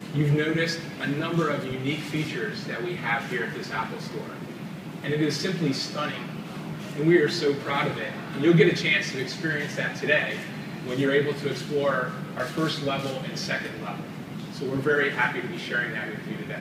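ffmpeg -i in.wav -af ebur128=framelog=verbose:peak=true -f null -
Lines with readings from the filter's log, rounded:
Integrated loudness:
  I:         -26.5 LUFS
  Threshold: -36.6 LUFS
Loudness range:
  LRA:         6.0 LU
  Threshold: -46.6 LUFS
  LRA low:   -29.8 LUFS
  LRA high:  -23.7 LUFS
True peak:
  Peak:       -6.2 dBFS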